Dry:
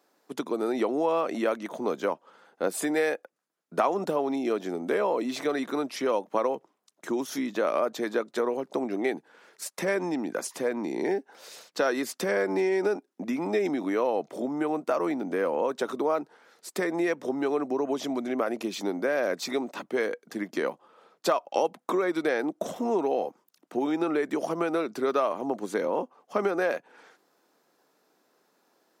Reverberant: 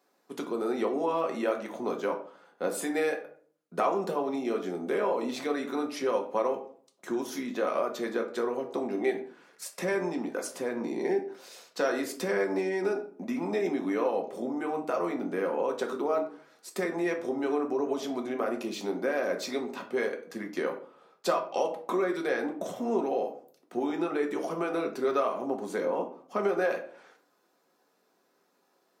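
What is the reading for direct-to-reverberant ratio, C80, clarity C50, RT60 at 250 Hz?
2.0 dB, 14.5 dB, 10.5 dB, 0.60 s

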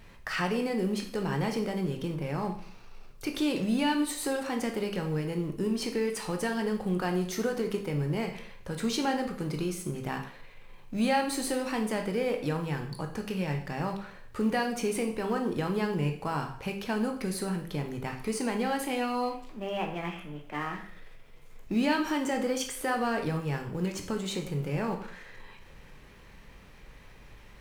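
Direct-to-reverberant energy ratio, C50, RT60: 3.5 dB, 9.0 dB, 0.55 s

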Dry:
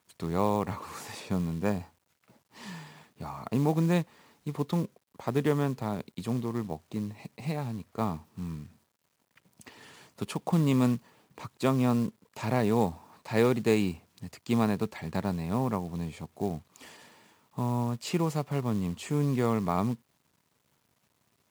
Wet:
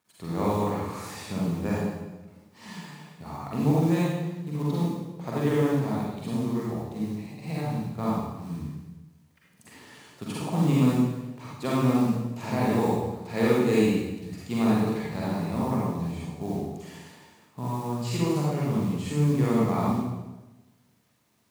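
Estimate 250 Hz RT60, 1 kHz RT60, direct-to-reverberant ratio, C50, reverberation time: 1.3 s, 1.0 s, -6.5 dB, -3.5 dB, 1.1 s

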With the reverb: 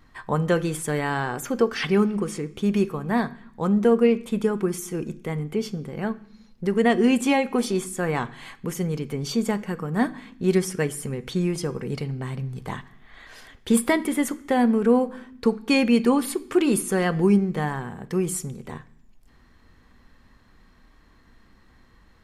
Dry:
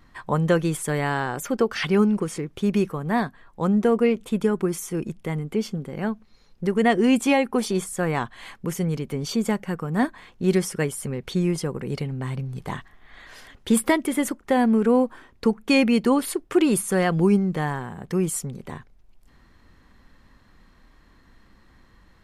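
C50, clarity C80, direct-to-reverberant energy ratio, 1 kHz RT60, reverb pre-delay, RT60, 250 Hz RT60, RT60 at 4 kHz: 18.5 dB, 21.5 dB, 10.0 dB, 0.65 s, 3 ms, 0.65 s, 1.0 s, 0.85 s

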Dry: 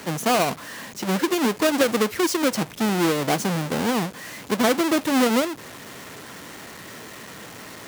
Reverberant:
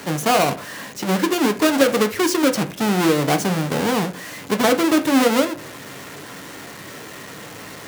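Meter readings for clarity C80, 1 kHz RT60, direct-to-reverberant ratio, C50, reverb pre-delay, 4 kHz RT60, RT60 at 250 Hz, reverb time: 21.0 dB, 0.35 s, 7.0 dB, 16.5 dB, 5 ms, 0.25 s, 0.45 s, 0.40 s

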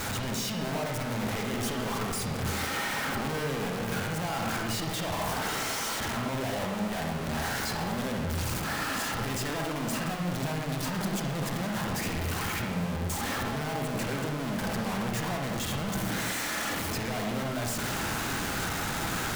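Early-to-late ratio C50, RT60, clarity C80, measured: 1.0 dB, 1.0 s, 4.5 dB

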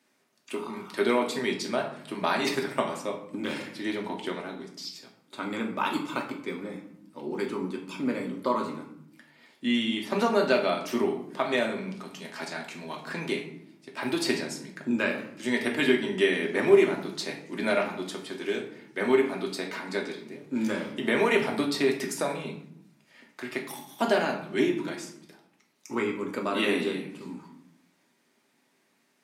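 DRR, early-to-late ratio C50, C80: 0.0 dB, 8.0 dB, 11.5 dB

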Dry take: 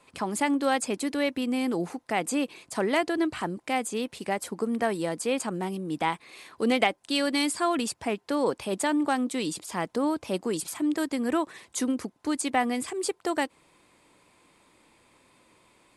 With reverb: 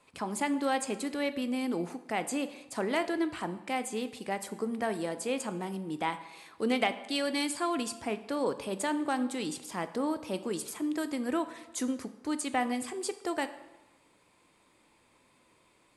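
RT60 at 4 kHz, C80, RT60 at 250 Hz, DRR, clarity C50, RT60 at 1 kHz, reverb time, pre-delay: 0.80 s, 15.5 dB, 1.1 s, 10.0 dB, 13.5 dB, 1.1 s, 1.1 s, 7 ms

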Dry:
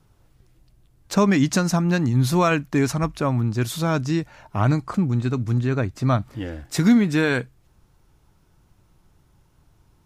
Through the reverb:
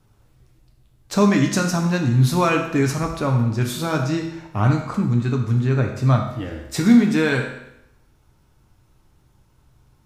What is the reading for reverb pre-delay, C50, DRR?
6 ms, 6.0 dB, 1.5 dB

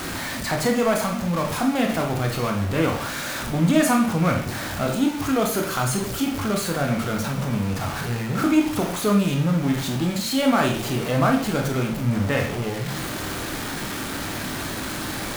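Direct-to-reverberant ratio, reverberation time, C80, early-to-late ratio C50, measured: 1.5 dB, 0.55 s, 11.0 dB, 6.5 dB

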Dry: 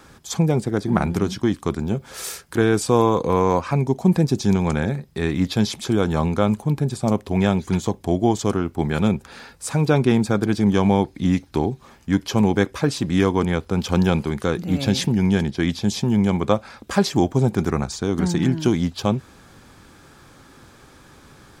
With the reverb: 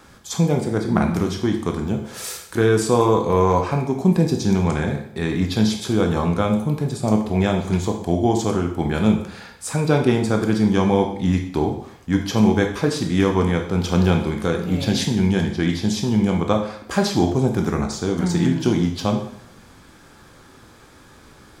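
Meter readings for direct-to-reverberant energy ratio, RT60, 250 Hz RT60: 3.0 dB, 0.65 s, 0.65 s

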